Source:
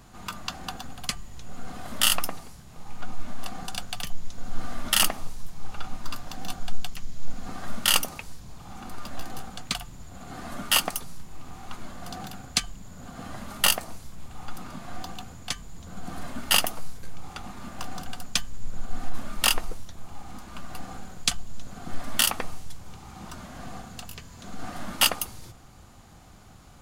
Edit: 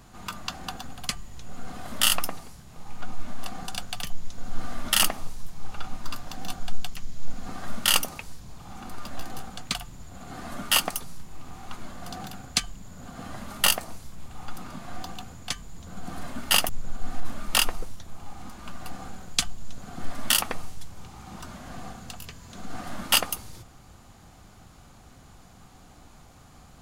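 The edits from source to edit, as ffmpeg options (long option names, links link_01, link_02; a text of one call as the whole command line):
ffmpeg -i in.wav -filter_complex "[0:a]asplit=2[link_01][link_02];[link_01]atrim=end=16.692[link_03];[link_02]atrim=start=18.578[link_04];[link_03][link_04]acrossfade=duration=0.004:curve1=hsin:curve2=hsin" out.wav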